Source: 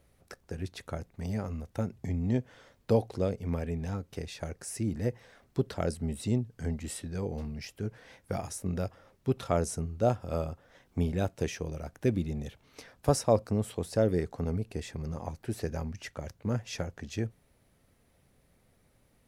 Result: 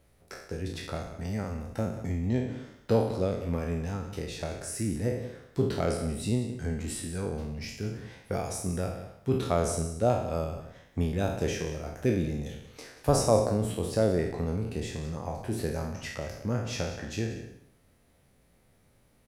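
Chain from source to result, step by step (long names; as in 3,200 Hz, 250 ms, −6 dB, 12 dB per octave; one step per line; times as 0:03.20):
peak hold with a decay on every bin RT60 0.72 s
single-tap delay 183 ms −13.5 dB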